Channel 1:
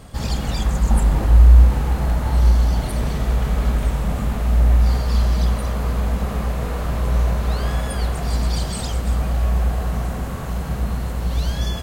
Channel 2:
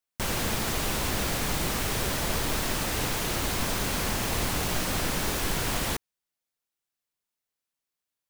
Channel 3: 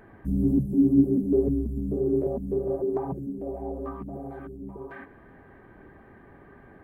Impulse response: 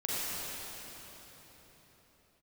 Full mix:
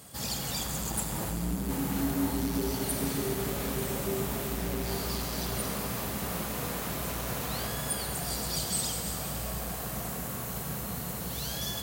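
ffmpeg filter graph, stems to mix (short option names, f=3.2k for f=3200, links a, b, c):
-filter_complex "[0:a]aemphasis=mode=production:type=75fm,asoftclip=type=hard:threshold=-14dB,volume=-11.5dB,asplit=2[a][b];[b]volume=-9dB[c];[1:a]adelay=1700,volume=-6dB[d];[2:a]adelay=1250,volume=-6dB,asplit=2[e][f];[f]volume=-15.5dB[g];[d][e]amix=inputs=2:normalize=0,bass=f=250:g=3,treble=f=4k:g=-2,acompressor=threshold=-35dB:ratio=6,volume=0dB[h];[3:a]atrim=start_sample=2205[i];[c][g]amix=inputs=2:normalize=0[j];[j][i]afir=irnorm=-1:irlink=0[k];[a][h][k]amix=inputs=3:normalize=0,highpass=120"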